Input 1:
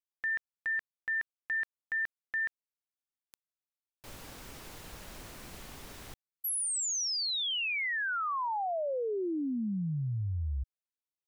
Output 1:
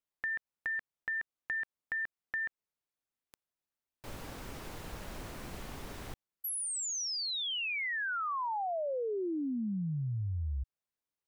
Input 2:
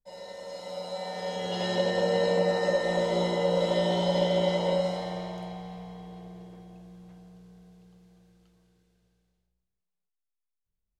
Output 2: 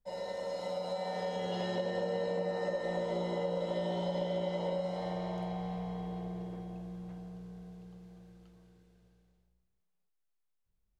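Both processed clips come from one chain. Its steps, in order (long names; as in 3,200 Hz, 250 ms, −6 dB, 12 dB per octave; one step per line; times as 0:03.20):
high-shelf EQ 2,200 Hz −7.5 dB
downward compressor 4 to 1, threshold −39 dBFS
level +5 dB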